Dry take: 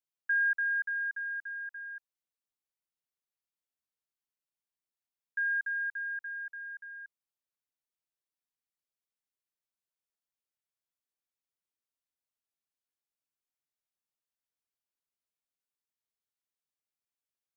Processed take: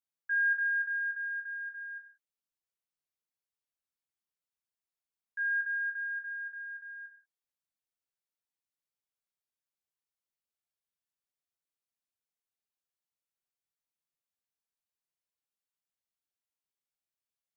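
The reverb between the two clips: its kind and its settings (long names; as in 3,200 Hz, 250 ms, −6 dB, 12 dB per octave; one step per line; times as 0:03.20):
reverb whose tail is shaped and stops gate 210 ms falling, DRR 1 dB
level −6 dB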